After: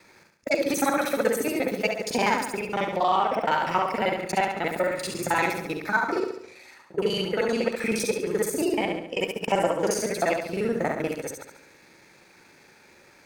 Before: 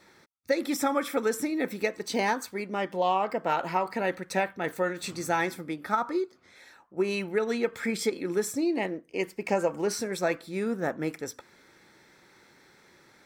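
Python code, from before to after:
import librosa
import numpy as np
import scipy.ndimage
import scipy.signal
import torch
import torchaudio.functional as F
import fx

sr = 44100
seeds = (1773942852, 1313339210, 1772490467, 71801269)

y = fx.local_reverse(x, sr, ms=39.0)
y = fx.room_flutter(y, sr, wall_m=12.0, rt60_s=0.69)
y = fx.formant_shift(y, sr, semitones=2)
y = y * 10.0 ** (3.0 / 20.0)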